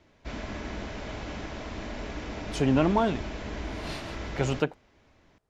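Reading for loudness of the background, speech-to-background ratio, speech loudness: -37.5 LUFS, 10.5 dB, -27.0 LUFS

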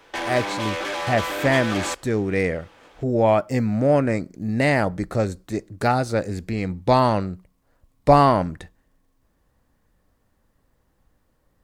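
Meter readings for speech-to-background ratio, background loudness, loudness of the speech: 5.5 dB, -27.5 LUFS, -22.0 LUFS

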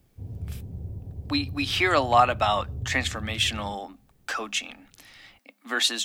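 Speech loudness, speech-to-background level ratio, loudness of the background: -25.0 LUFS, 12.5 dB, -37.5 LUFS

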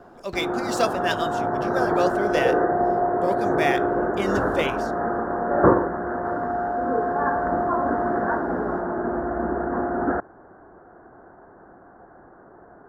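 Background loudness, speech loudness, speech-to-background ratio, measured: -24.0 LUFS, -28.0 LUFS, -4.0 dB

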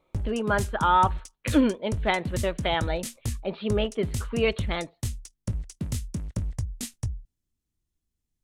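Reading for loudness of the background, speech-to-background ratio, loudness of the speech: -34.0 LUFS, 7.0 dB, -27.0 LUFS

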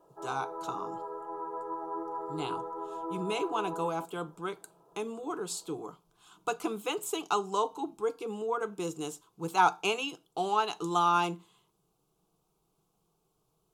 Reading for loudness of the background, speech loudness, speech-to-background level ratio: -39.0 LUFS, -33.0 LUFS, 6.0 dB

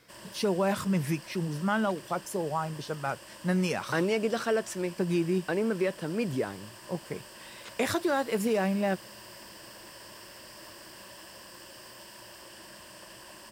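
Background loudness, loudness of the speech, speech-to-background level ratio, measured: -47.0 LUFS, -30.5 LUFS, 16.5 dB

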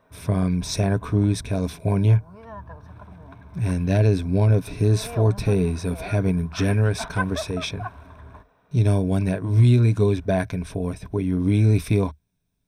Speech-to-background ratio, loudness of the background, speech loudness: 17.0 dB, -39.0 LUFS, -22.0 LUFS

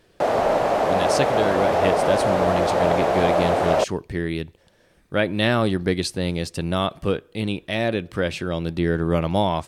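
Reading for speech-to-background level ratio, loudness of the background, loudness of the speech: -4.5 dB, -20.5 LUFS, -25.0 LUFS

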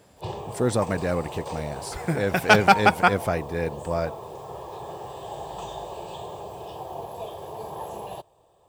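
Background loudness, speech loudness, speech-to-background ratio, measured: -36.5 LUFS, -23.5 LUFS, 13.0 dB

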